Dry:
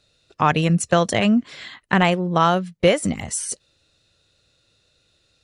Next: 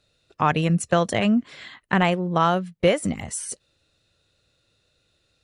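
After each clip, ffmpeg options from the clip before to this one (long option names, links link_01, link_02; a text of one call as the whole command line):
ffmpeg -i in.wav -af "equalizer=frequency=5400:width_type=o:width=1.4:gain=-4,volume=-2.5dB" out.wav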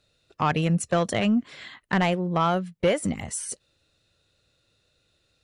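ffmpeg -i in.wav -af "asoftclip=type=tanh:threshold=-12.5dB,volume=-1dB" out.wav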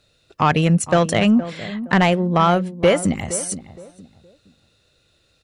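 ffmpeg -i in.wav -filter_complex "[0:a]asplit=2[link_01][link_02];[link_02]adelay=467,lowpass=frequency=1000:poles=1,volume=-13dB,asplit=2[link_03][link_04];[link_04]adelay=467,lowpass=frequency=1000:poles=1,volume=0.3,asplit=2[link_05][link_06];[link_06]adelay=467,lowpass=frequency=1000:poles=1,volume=0.3[link_07];[link_01][link_03][link_05][link_07]amix=inputs=4:normalize=0,volume=7dB" out.wav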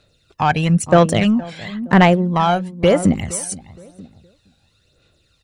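ffmpeg -i in.wav -af "aphaser=in_gain=1:out_gain=1:delay=1.3:decay=0.54:speed=0.99:type=sinusoidal,volume=-1.5dB" out.wav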